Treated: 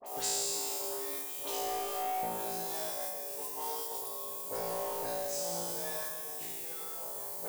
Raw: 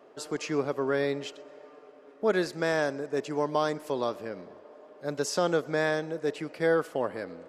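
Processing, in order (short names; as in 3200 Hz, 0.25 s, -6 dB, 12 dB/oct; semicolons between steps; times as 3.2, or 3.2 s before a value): reverse delay 0.108 s, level -2 dB; flipped gate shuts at -27 dBFS, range -28 dB; spring tank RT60 2.7 s, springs 40 ms, chirp 25 ms, DRR 2.5 dB; added noise blue -70 dBFS; high shelf 4100 Hz +7 dB; notch 590 Hz, Q 12; on a send: flutter echo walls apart 3 m, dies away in 1.5 s; on the sum: gate with hold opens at -46 dBFS; in parallel at -3 dB: level quantiser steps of 23 dB; on the sum: EQ curve 140 Hz 0 dB, 260 Hz -7 dB, 520 Hz +1 dB, 830 Hz +11 dB, 1400 Hz -4 dB, 8500 Hz +14 dB; soft clip -30 dBFS, distortion -9 dB; dispersion highs, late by 50 ms, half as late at 2800 Hz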